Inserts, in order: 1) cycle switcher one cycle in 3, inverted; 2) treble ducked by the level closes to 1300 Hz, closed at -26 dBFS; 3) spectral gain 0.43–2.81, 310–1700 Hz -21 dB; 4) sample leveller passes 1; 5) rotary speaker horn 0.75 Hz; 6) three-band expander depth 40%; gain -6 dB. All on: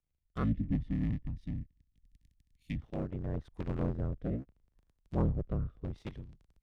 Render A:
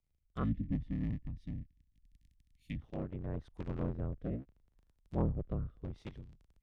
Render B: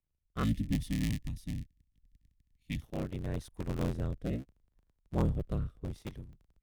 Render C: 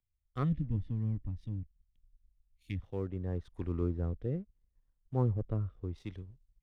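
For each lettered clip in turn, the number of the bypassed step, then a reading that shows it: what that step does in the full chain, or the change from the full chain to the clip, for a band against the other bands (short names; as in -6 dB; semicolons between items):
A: 4, loudness change -3.0 LU; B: 2, 2 kHz band +5.0 dB; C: 1, 2 kHz band -4.0 dB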